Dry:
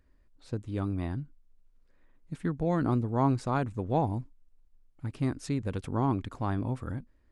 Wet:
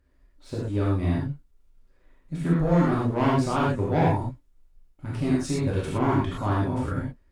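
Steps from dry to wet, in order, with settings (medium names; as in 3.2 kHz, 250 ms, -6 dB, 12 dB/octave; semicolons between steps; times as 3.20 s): one-sided clip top -23.5 dBFS, bottom -19.5 dBFS; waveshaping leveller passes 1; gated-style reverb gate 140 ms flat, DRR -7 dB; trim -2 dB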